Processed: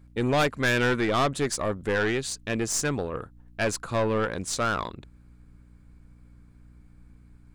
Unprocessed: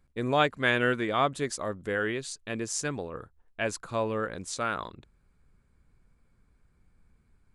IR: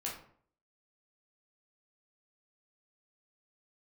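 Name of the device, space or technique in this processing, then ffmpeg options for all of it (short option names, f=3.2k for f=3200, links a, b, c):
valve amplifier with mains hum: -af "aeval=exprs='(tanh(20*val(0)+0.35)-tanh(0.35))/20':c=same,aeval=exprs='val(0)+0.00112*(sin(2*PI*60*n/s)+sin(2*PI*2*60*n/s)/2+sin(2*PI*3*60*n/s)/3+sin(2*PI*4*60*n/s)/4+sin(2*PI*5*60*n/s)/5)':c=same,volume=7.5dB"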